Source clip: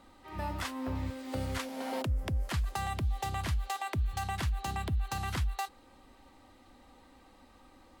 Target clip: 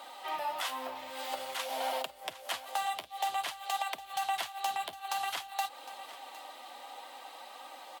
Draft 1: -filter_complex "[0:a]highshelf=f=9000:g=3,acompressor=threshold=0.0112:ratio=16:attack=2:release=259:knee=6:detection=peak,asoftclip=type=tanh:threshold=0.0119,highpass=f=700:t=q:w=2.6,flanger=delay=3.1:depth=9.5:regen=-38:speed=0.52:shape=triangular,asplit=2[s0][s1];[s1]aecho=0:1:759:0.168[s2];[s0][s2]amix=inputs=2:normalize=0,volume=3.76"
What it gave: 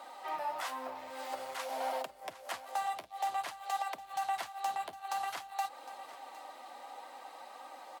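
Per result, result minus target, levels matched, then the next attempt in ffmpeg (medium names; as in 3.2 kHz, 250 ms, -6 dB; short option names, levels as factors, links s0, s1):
saturation: distortion +15 dB; 4 kHz band -6.0 dB; 8 kHz band -2.5 dB
-filter_complex "[0:a]highshelf=f=9000:g=3,acompressor=threshold=0.0112:ratio=16:attack=2:release=259:knee=6:detection=peak,asoftclip=type=tanh:threshold=0.0355,highpass=f=700:t=q:w=2.6,equalizer=f=3200:t=o:w=0.83:g=8.5,flanger=delay=3.1:depth=9.5:regen=-38:speed=0.52:shape=triangular,asplit=2[s0][s1];[s1]aecho=0:1:759:0.168[s2];[s0][s2]amix=inputs=2:normalize=0,volume=3.76"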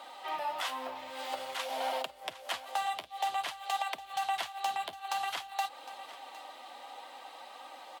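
8 kHz band -3.5 dB
-filter_complex "[0:a]highshelf=f=9000:g=12,acompressor=threshold=0.0112:ratio=16:attack=2:release=259:knee=6:detection=peak,asoftclip=type=tanh:threshold=0.0355,highpass=f=700:t=q:w=2.6,equalizer=f=3200:t=o:w=0.83:g=8.5,flanger=delay=3.1:depth=9.5:regen=-38:speed=0.52:shape=triangular,asplit=2[s0][s1];[s1]aecho=0:1:759:0.168[s2];[s0][s2]amix=inputs=2:normalize=0,volume=3.76"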